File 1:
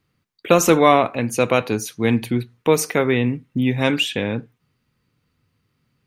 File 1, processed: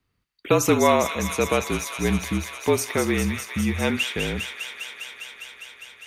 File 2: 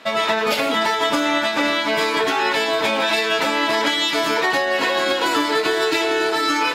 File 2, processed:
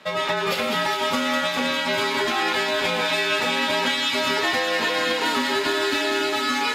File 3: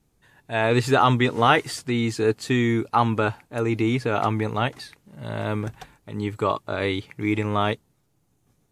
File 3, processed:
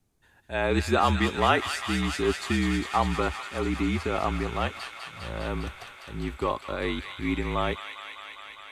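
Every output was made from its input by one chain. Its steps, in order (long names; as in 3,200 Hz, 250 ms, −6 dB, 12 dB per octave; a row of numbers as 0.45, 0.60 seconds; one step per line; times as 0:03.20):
frequency shifter −43 Hz
delay with a high-pass on its return 202 ms, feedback 84%, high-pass 1,700 Hz, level −5 dB
level −4.5 dB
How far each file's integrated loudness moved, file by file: −4.5, −3.0, −4.0 LU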